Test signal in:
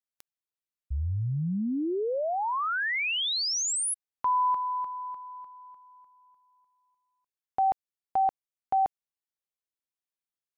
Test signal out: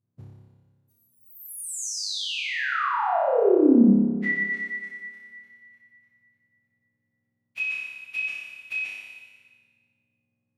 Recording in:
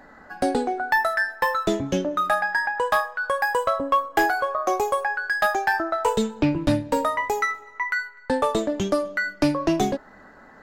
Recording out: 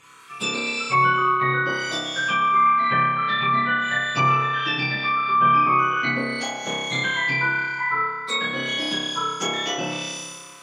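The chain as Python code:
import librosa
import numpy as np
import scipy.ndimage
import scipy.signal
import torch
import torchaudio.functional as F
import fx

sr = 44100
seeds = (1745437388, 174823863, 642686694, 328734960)

y = fx.octave_mirror(x, sr, pivot_hz=1400.0)
y = fx.room_flutter(y, sr, wall_m=5.1, rt60_s=1.4)
y = fx.env_lowpass_down(y, sr, base_hz=1500.0, full_db=-15.0)
y = fx.rev_freeverb(y, sr, rt60_s=1.9, hf_ratio=0.8, predelay_ms=70, drr_db=13.0)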